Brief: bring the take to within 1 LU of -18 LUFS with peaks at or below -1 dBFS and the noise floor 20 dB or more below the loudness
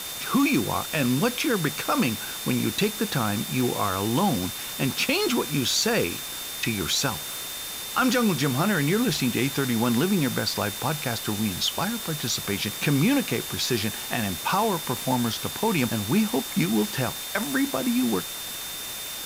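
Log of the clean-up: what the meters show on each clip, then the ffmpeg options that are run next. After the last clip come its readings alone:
steady tone 3.6 kHz; tone level -38 dBFS; noise floor -34 dBFS; noise floor target -45 dBFS; loudness -25.0 LUFS; peak level -10.0 dBFS; loudness target -18.0 LUFS
-> -af "bandreject=f=3600:w=30"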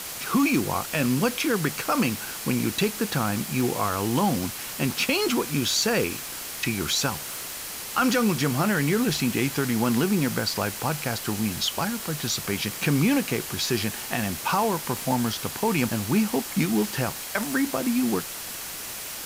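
steady tone not found; noise floor -36 dBFS; noise floor target -45 dBFS
-> -af "afftdn=nr=9:nf=-36"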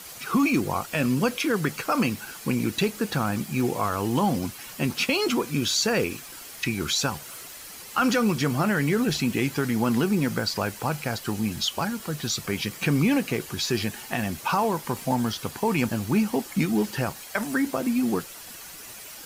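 noise floor -42 dBFS; noise floor target -46 dBFS
-> -af "afftdn=nr=6:nf=-42"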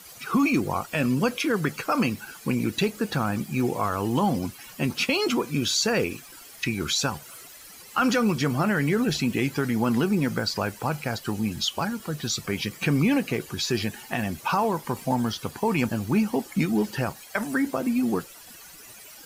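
noise floor -46 dBFS; loudness -26.0 LUFS; peak level -10.5 dBFS; loudness target -18.0 LUFS
-> -af "volume=2.51"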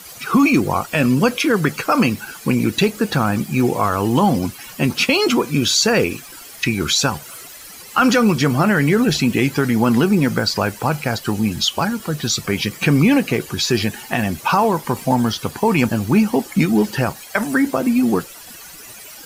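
loudness -18.0 LUFS; peak level -2.5 dBFS; noise floor -38 dBFS

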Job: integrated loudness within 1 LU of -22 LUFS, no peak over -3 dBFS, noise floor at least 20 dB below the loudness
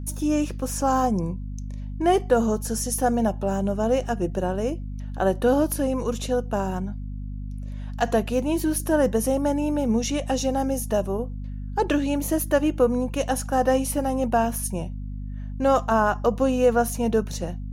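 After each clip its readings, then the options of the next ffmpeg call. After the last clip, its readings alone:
hum 50 Hz; highest harmonic 250 Hz; hum level -30 dBFS; loudness -24.0 LUFS; peak level -8.0 dBFS; loudness target -22.0 LUFS
-> -af "bandreject=f=50:t=h:w=4,bandreject=f=100:t=h:w=4,bandreject=f=150:t=h:w=4,bandreject=f=200:t=h:w=4,bandreject=f=250:t=h:w=4"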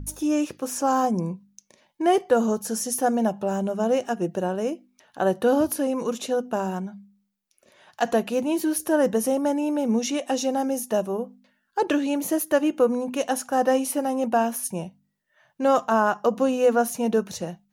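hum not found; loudness -24.0 LUFS; peak level -8.5 dBFS; loudness target -22.0 LUFS
-> -af "volume=1.26"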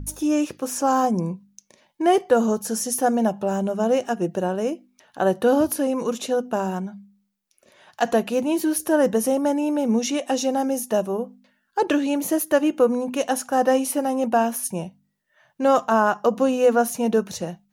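loudness -22.0 LUFS; peak level -6.5 dBFS; noise floor -71 dBFS

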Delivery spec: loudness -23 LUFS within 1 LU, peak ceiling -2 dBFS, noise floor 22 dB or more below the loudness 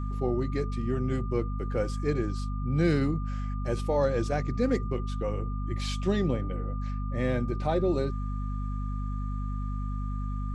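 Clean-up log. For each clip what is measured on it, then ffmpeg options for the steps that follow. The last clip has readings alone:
hum 50 Hz; highest harmonic 250 Hz; hum level -29 dBFS; steady tone 1.2 kHz; tone level -43 dBFS; loudness -30.5 LUFS; peak level -12.5 dBFS; loudness target -23.0 LUFS
-> -af "bandreject=f=50:t=h:w=6,bandreject=f=100:t=h:w=6,bandreject=f=150:t=h:w=6,bandreject=f=200:t=h:w=6,bandreject=f=250:t=h:w=6"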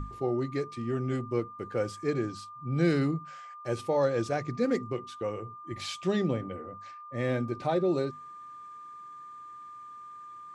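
hum not found; steady tone 1.2 kHz; tone level -43 dBFS
-> -af "bandreject=f=1200:w=30"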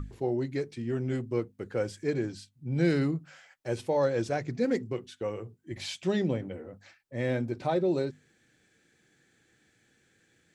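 steady tone not found; loudness -31.5 LUFS; peak level -13.5 dBFS; loudness target -23.0 LUFS
-> -af "volume=2.66"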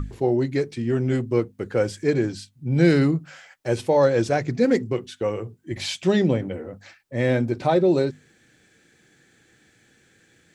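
loudness -23.0 LUFS; peak level -5.0 dBFS; noise floor -60 dBFS

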